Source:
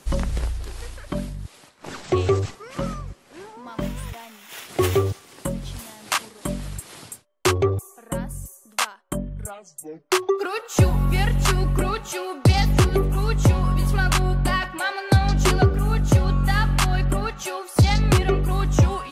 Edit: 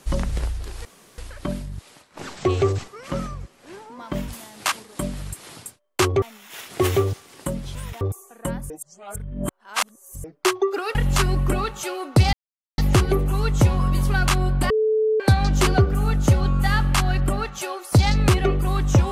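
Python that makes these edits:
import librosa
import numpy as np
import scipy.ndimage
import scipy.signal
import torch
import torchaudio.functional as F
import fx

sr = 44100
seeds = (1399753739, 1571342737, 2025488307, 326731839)

y = fx.edit(x, sr, fx.insert_room_tone(at_s=0.85, length_s=0.33),
    fx.swap(start_s=3.95, length_s=0.26, other_s=5.74, other_length_s=1.94),
    fx.reverse_span(start_s=8.37, length_s=1.54),
    fx.cut(start_s=10.62, length_s=0.62),
    fx.insert_silence(at_s=12.62, length_s=0.45),
    fx.bleep(start_s=14.54, length_s=0.5, hz=435.0, db=-16.5), tone=tone)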